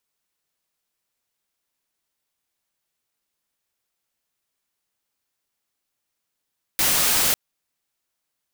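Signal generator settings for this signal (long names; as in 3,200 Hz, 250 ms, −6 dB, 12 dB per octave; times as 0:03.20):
noise white, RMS −19.5 dBFS 0.55 s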